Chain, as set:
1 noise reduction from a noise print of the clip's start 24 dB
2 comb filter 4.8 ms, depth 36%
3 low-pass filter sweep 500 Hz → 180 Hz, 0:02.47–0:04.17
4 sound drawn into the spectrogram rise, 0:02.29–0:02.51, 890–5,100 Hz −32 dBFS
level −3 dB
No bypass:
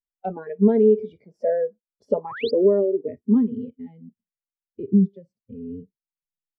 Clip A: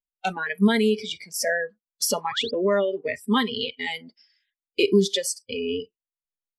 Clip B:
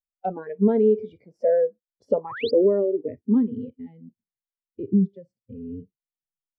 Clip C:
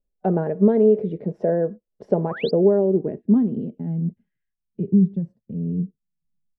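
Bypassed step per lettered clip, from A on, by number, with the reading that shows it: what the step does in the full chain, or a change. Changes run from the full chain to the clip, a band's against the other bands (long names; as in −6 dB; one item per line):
3, 4 kHz band +21.0 dB
2, 125 Hz band −2.0 dB
1, 125 Hz band +5.5 dB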